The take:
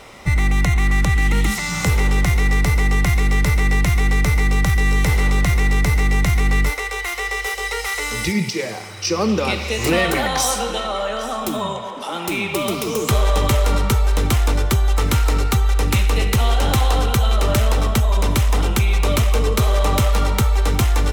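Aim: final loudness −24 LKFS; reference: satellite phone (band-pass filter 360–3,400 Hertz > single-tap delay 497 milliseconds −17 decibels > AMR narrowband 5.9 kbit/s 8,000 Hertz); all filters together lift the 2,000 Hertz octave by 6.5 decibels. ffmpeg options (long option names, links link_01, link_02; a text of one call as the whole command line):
ffmpeg -i in.wav -af "highpass=360,lowpass=3400,equalizer=frequency=2000:width_type=o:gain=7.5,aecho=1:1:497:0.141,volume=-1dB" -ar 8000 -c:a libopencore_amrnb -b:a 5900 out.amr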